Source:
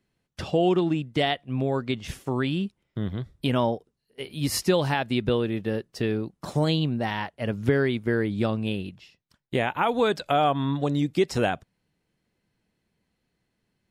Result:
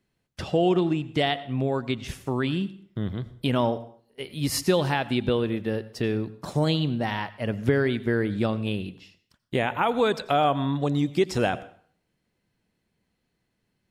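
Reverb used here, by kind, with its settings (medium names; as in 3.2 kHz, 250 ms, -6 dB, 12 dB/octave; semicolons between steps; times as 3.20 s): plate-style reverb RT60 0.54 s, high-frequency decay 0.85×, pre-delay 75 ms, DRR 16.5 dB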